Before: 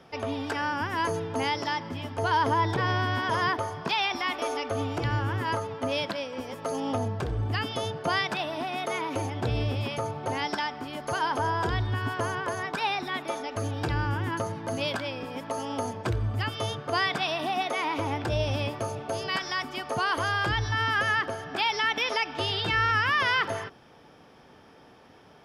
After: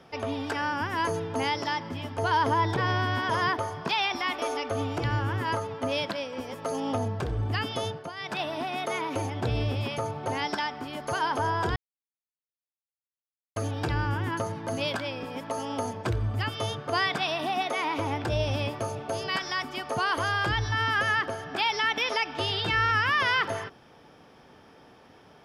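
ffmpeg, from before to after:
-filter_complex "[0:a]asplit=5[a][b][c][d][e];[a]atrim=end=8.12,asetpts=PTS-STARTPTS,afade=t=out:st=7.88:d=0.24:silence=0.16788[f];[b]atrim=start=8.12:end=8.16,asetpts=PTS-STARTPTS,volume=-15.5dB[g];[c]atrim=start=8.16:end=11.76,asetpts=PTS-STARTPTS,afade=t=in:d=0.24:silence=0.16788,afade=t=out:st=3.596:d=0.004:c=hsin[h];[d]atrim=start=11.76:end=13.56,asetpts=PTS-STARTPTS,volume=0[i];[e]atrim=start=13.56,asetpts=PTS-STARTPTS,afade=t=in:d=0.004:c=hsin[j];[f][g][h][i][j]concat=n=5:v=0:a=1"

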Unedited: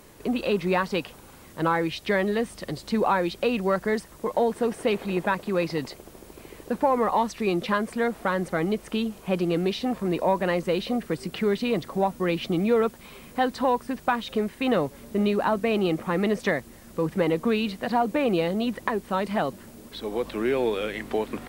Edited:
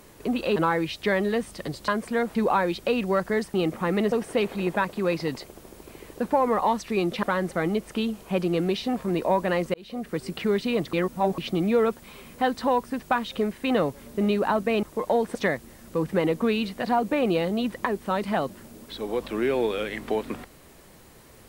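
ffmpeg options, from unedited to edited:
-filter_complex "[0:a]asplit=12[a][b][c][d][e][f][g][h][i][j][k][l];[a]atrim=end=0.562[m];[b]atrim=start=1.588:end=2.912[n];[c]atrim=start=7.728:end=8.202[o];[d]atrim=start=2.908:end=4.102[p];[e]atrim=start=15.798:end=16.382[q];[f]atrim=start=4.618:end=7.732[r];[g]atrim=start=8.198:end=10.71,asetpts=PTS-STARTPTS,afade=t=out:st=2.508:d=0.004:c=hsin[s];[h]atrim=start=10.71:end=11.902,asetpts=PTS-STARTPTS,afade=t=in:d=0.49[t];[i]atrim=start=11.898:end=12.352,asetpts=PTS-STARTPTS,areverse[u];[j]atrim=start=12.348:end=15.802[v];[k]atrim=start=4.098:end=4.622[w];[l]atrim=start=16.378[x];[m][n]acrossfade=d=0.004:c1=hsin:c2=hsin[y];[y][o]acrossfade=d=0.004:c1=hsin:c2=hsin[z];[z][p]acrossfade=d=0.004:c1=hsin:c2=hsin[aa];[aa][q]acrossfade=d=0.004:c1=hsin:c2=hsin[ab];[ab][r]acrossfade=d=0.004:c1=hsin:c2=hsin[ac];[s][t]concat=n=2:v=0:a=1[ad];[ac][ad]acrossfade=d=0.004:c1=hsin:c2=hsin[ae];[ae][u]acrossfade=d=0.004:c1=hsin:c2=hsin[af];[af][v]acrossfade=d=0.004:c1=hsin:c2=hsin[ag];[ag][w]acrossfade=d=0.004:c1=hsin:c2=hsin[ah];[ah][x]acrossfade=d=0.004:c1=hsin:c2=hsin"

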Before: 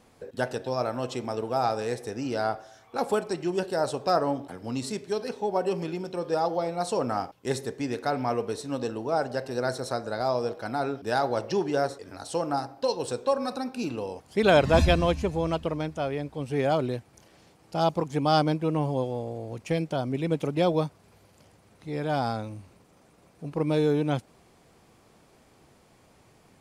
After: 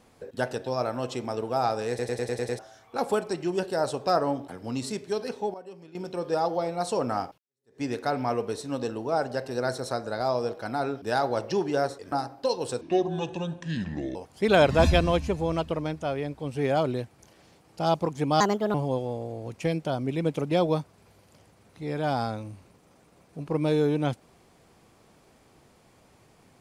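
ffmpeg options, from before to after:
-filter_complex "[0:a]asplit=16[a][b][c][d][e][f][g][h][i][j][k][l][m][n][o][p];[a]atrim=end=1.992[q];[b]atrim=start=1.888:end=1.992[r];[c]atrim=start=1.888:end=1.992[s];[d]atrim=start=1.888:end=1.992[t];[e]atrim=start=1.888:end=1.992[u];[f]atrim=start=1.888:end=1.992[v];[g]atrim=start=1.888:end=1.992[w];[h]atrim=start=2.588:end=5.54,asetpts=PTS-STARTPTS,afade=t=out:st=2.662:d=0.29:c=log:silence=0.149624[x];[i]atrim=start=5.54:end=5.95,asetpts=PTS-STARTPTS,volume=-16.5dB[y];[j]atrim=start=5.95:end=7.38,asetpts=PTS-STARTPTS,afade=t=in:d=0.29:c=log:silence=0.149624,afade=t=out:st=1.426:d=0.004:c=hsin[z];[k]atrim=start=7.38:end=12.122,asetpts=PTS-STARTPTS,afade=t=in:d=0.44:c=exp[aa];[l]atrim=start=12.508:end=13.204[ab];[m]atrim=start=13.2:end=14.1,asetpts=PTS-STARTPTS,asetrate=29547,aresample=44100[ac];[n]atrim=start=14.096:end=18.354[ad];[o]atrim=start=18.35:end=18.8,asetpts=PTS-STARTPTS,asetrate=58653,aresample=44100,atrim=end_sample=14921,asetpts=PTS-STARTPTS[ae];[p]atrim=start=18.796[af];[q][r]acrossfade=d=0.004:c1=hsin:c2=hsin[ag];[ag][s]acrossfade=d=0.004:c1=hsin:c2=hsin[ah];[ah][t]acrossfade=d=0.004:c1=hsin:c2=hsin[ai];[ai][u]acrossfade=d=0.004:c1=hsin:c2=hsin[aj];[aj][v]acrossfade=d=0.004:c1=hsin:c2=hsin[ak];[ak][w]acrossfade=d=0.004:c1=hsin:c2=hsin[al];[x][y][z][aa]concat=n=4:v=0:a=1[am];[al][am]acrossfade=d=0.004:c1=hsin:c2=hsin[an];[an][ab]acrossfade=d=0.004:c1=hsin:c2=hsin[ao];[ao][ac]acrossfade=d=0.004:c1=hsin:c2=hsin[ap];[ap][ad]acrossfade=d=0.004:c1=hsin:c2=hsin[aq];[aq][ae]acrossfade=d=0.004:c1=hsin:c2=hsin[ar];[ar][af]acrossfade=d=0.004:c1=hsin:c2=hsin"

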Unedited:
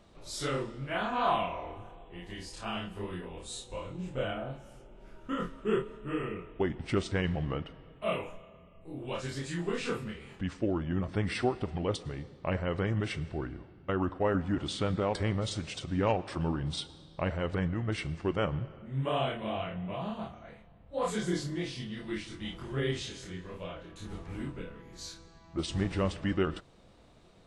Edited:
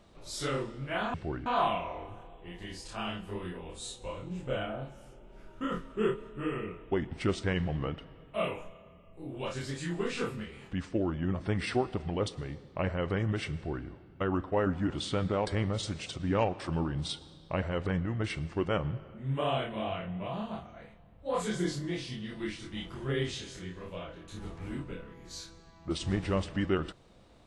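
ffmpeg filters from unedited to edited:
-filter_complex "[0:a]asplit=3[a][b][c];[a]atrim=end=1.142[d];[b]atrim=start=13.228:end=13.552[e];[c]atrim=start=1.138[f];[d][e]acrossfade=d=0.004:c1=hsin:c2=hsin[g];[g][f]acrossfade=d=0.004:c1=hsin:c2=hsin"

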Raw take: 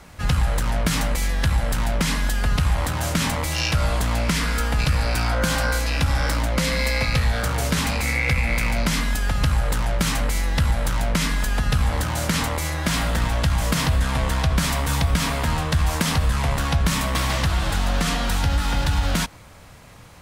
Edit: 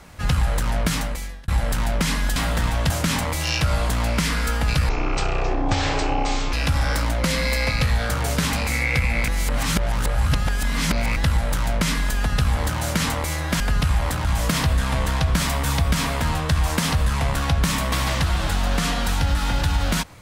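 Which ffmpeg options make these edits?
-filter_complex "[0:a]asplit=10[a][b][c][d][e][f][g][h][i][j];[a]atrim=end=1.48,asetpts=PTS-STARTPTS,afade=t=out:st=0.85:d=0.63[k];[b]atrim=start=1.48:end=2.362,asetpts=PTS-STARTPTS,afade=t=in:d=0.004:c=hsin[l];[c]atrim=start=12.938:end=13.482[m];[d]atrim=start=3.008:end=5.004[n];[e]atrim=start=5:end=5.87,asetpts=PTS-STARTPTS,asetrate=23373,aresample=44100[o];[f]atrim=start=5.866:end=8.622[p];[g]atrim=start=8.618:end=10.502,asetpts=PTS-STARTPTS,areverse[q];[h]atrim=start=10.498:end=12.942[r];[i]atrim=start=2.358:end=3.012[s];[j]atrim=start=13.478[t];[k][l]concat=n=2:v=0:a=1[u];[u][m]acrossfade=d=0.004:c1=hsin:c2=hsin[v];[v][n]acrossfade=d=0.004:c1=hsin:c2=hsin[w];[w][o]acrossfade=d=0.004:c1=hsin:c2=hsin[x];[x][p]acrossfade=d=0.004:c1=hsin:c2=hsin[y];[y][q]acrossfade=d=0.004:c1=hsin:c2=hsin[z];[z][r]acrossfade=d=0.004:c1=hsin:c2=hsin[aa];[aa][s]acrossfade=d=0.004:c1=hsin:c2=hsin[ab];[ab][t]acrossfade=d=0.004:c1=hsin:c2=hsin"

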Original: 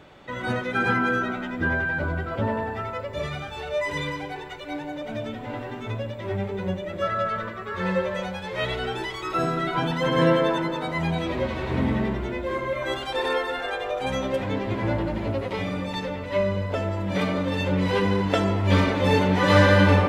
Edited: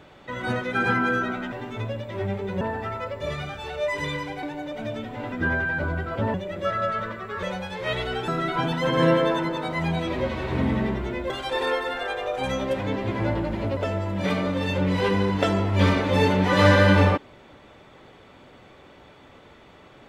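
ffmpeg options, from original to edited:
-filter_complex "[0:a]asplit=10[a][b][c][d][e][f][g][h][i][j];[a]atrim=end=1.522[k];[b]atrim=start=5.618:end=6.712[l];[c]atrim=start=2.538:end=4.362[m];[d]atrim=start=4.728:end=5.622[n];[e]atrim=start=1.518:end=2.542[o];[f]atrim=start=6.708:end=7.802[p];[g]atrim=start=8.148:end=9.002[q];[h]atrim=start=9.468:end=12.492[r];[i]atrim=start=12.928:end=15.402[s];[j]atrim=start=16.678[t];[k][l]acrossfade=d=0.004:c1=hsin:c2=hsin[u];[u][m]acrossfade=d=0.004:c1=hsin:c2=hsin[v];[v][n]acrossfade=d=0.004:c1=hsin:c2=hsin[w];[w][o]acrossfade=d=0.004:c1=hsin:c2=hsin[x];[x][p]acrossfade=d=0.004:c1=hsin:c2=hsin[y];[y][q]acrossfade=d=0.004:c1=hsin:c2=hsin[z];[z][r]acrossfade=d=0.004:c1=hsin:c2=hsin[aa];[aa][s]acrossfade=d=0.004:c1=hsin:c2=hsin[ab];[ab][t]acrossfade=d=0.004:c1=hsin:c2=hsin"

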